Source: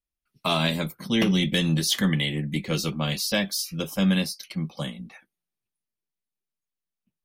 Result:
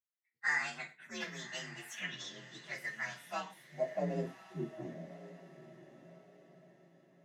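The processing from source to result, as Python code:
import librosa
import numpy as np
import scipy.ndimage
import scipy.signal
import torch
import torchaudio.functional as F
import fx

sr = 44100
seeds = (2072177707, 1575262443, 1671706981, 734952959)

p1 = fx.partial_stretch(x, sr, pct=126)
p2 = fx.rev_gated(p1, sr, seeds[0], gate_ms=140, shape='falling', drr_db=6.5)
p3 = fx.filter_sweep_bandpass(p2, sr, from_hz=1900.0, to_hz=360.0, start_s=3.02, end_s=4.38, q=5.1)
p4 = p3 + fx.echo_diffused(p3, sr, ms=1090, feedback_pct=41, wet_db=-14.0, dry=0)
y = p4 * 10.0 ** (5.5 / 20.0)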